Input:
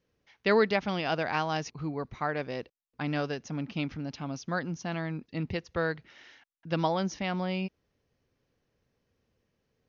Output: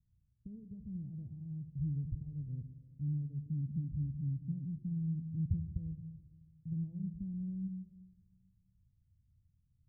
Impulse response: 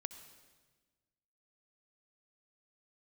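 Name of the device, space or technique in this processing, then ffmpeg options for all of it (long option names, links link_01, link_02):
club heard from the street: -filter_complex "[0:a]alimiter=limit=-24dB:level=0:latency=1:release=291,lowpass=frequency=130:width=0.5412,lowpass=frequency=130:width=1.3066[link_01];[1:a]atrim=start_sample=2205[link_02];[link_01][link_02]afir=irnorm=-1:irlink=0,volume=12dB"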